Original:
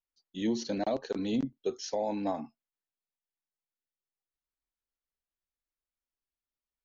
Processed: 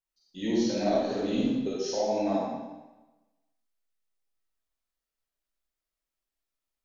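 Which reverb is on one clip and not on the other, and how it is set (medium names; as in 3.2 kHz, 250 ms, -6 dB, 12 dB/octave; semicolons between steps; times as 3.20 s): algorithmic reverb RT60 1.1 s, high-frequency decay 0.95×, pre-delay 5 ms, DRR -7 dB; trim -3 dB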